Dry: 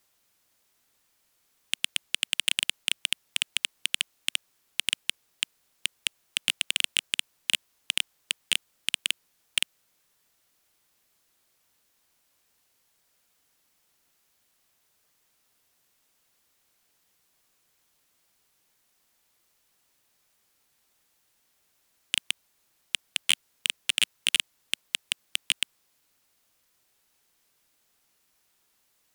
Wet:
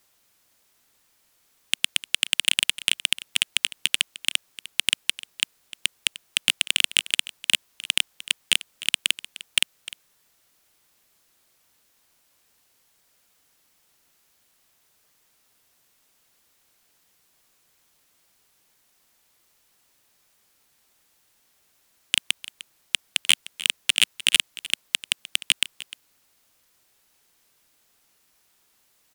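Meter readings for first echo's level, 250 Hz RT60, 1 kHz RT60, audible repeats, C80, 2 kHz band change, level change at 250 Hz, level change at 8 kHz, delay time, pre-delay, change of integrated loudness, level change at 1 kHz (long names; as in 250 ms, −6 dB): −17.0 dB, no reverb audible, no reverb audible, 1, no reverb audible, +5.0 dB, +5.0 dB, +5.0 dB, 303 ms, no reverb audible, +5.0 dB, +5.0 dB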